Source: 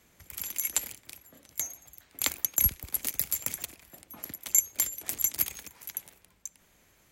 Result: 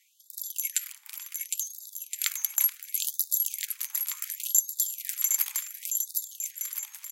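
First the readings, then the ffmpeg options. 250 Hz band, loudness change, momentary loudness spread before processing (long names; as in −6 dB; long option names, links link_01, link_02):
below −40 dB, +1.0 dB, 20 LU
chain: -af "aecho=1:1:760|1368|1854|2244|2555:0.631|0.398|0.251|0.158|0.1,afftfilt=real='re*gte(b*sr/1024,780*pow(3600/780,0.5+0.5*sin(2*PI*0.69*pts/sr)))':imag='im*gte(b*sr/1024,780*pow(3600/780,0.5+0.5*sin(2*PI*0.69*pts/sr)))':win_size=1024:overlap=0.75"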